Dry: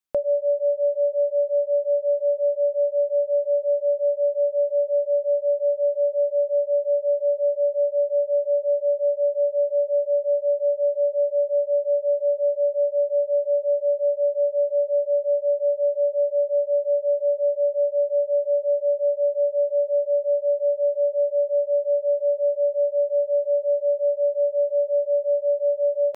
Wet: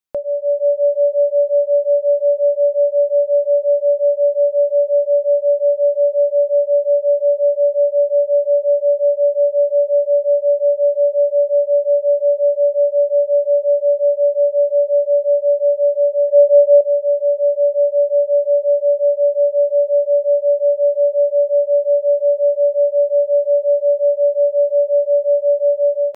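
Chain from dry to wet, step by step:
0:16.28–0:16.81: dynamic equaliser 510 Hz, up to +7 dB, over −34 dBFS, Q 0.74
automatic gain control gain up to 7 dB

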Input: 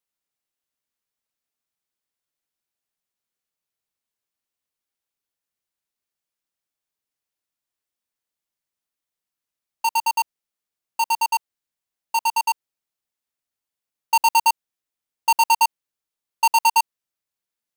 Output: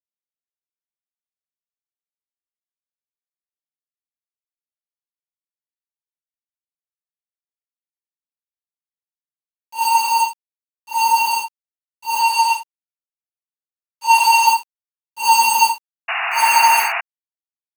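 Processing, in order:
random phases in long frames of 200 ms
centre clipping without the shift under −45 dBFS
0:12.21–0:14.47: meter weighting curve A
0:16.08–0:17.01: sound drawn into the spectrogram noise 650–2,900 Hz −28 dBFS
level +6 dB

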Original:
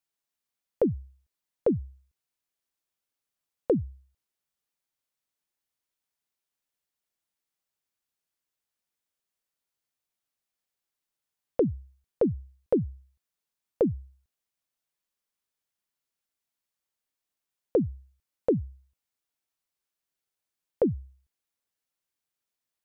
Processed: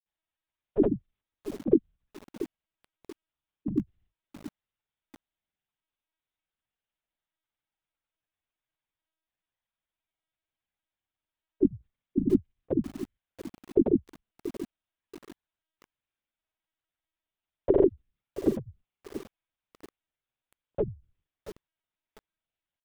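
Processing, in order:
high-pass filter 120 Hz 24 dB per octave
comb filter 3.1 ms, depth 65%
linear-prediction vocoder at 8 kHz pitch kept
granular cloud 100 ms
feedback echo at a low word length 681 ms, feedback 35%, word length 6 bits, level −12.5 dB

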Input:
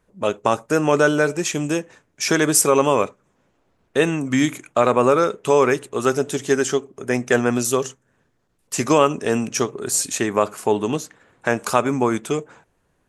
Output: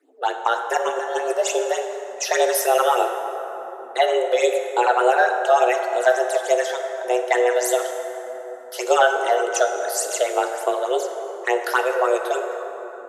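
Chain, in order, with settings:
frequency shifter +250 Hz
all-pass phaser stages 8, 3.4 Hz, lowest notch 290–1,900 Hz
0:00.77–0:01.33: compressor whose output falls as the input rises −30 dBFS, ratio −1
parametric band 340 Hz +6.5 dB 1.1 octaves
dense smooth reverb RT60 3.9 s, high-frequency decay 0.45×, DRR 4.5 dB

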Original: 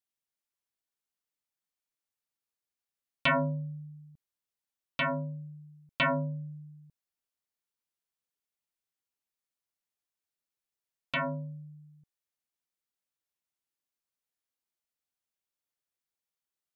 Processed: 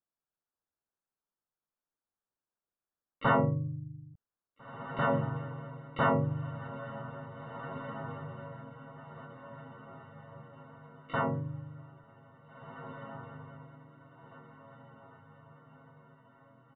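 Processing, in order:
Butterworth low-pass 1,700 Hz 72 dB per octave
pitch-shifted copies added −7 semitones −8 dB, −3 semitones −3 dB, +12 semitones −14 dB
feedback delay with all-pass diffusion 1,828 ms, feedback 46%, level −10 dB

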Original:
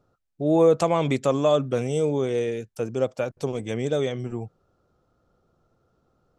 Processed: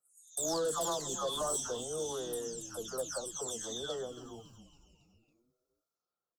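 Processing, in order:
every frequency bin delayed by itself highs early, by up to 429 ms
noise gate −49 dBFS, range −16 dB
first difference
in parallel at −5 dB: sine wavefolder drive 10 dB, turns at −28 dBFS
on the sum: Butterworth band-reject 2,300 Hz, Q 1
echo with shifted repeats 277 ms, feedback 53%, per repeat −150 Hz, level −14.5 dB

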